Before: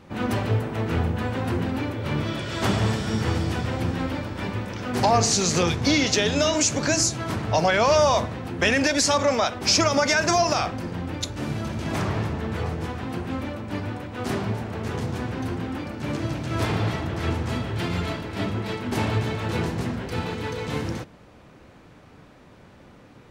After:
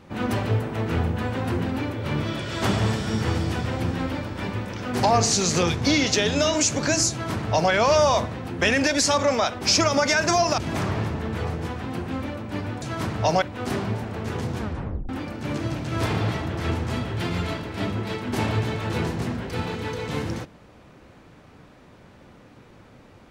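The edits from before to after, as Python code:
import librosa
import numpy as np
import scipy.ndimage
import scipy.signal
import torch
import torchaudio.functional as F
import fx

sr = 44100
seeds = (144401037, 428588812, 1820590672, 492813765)

y = fx.edit(x, sr, fx.duplicate(start_s=7.11, length_s=0.6, to_s=14.01),
    fx.cut(start_s=10.58, length_s=1.19),
    fx.tape_stop(start_s=15.17, length_s=0.51), tone=tone)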